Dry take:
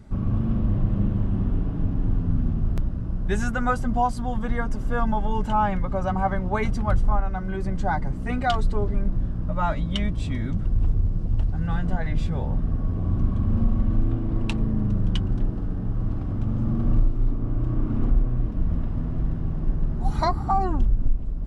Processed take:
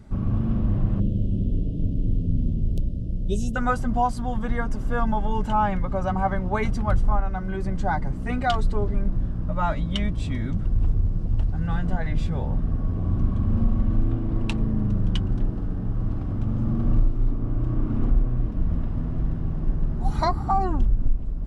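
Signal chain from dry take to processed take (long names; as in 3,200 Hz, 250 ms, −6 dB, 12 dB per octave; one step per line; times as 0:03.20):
0:01.00–0:03.56: elliptic band-stop filter 570–3,000 Hz, stop band 40 dB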